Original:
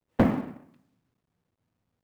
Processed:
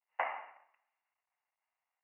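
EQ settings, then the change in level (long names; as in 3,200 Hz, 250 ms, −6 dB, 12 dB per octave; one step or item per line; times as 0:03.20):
high-pass filter 910 Hz 24 dB per octave
Chebyshev low-pass with heavy ripple 2,900 Hz, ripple 9 dB
+3.5 dB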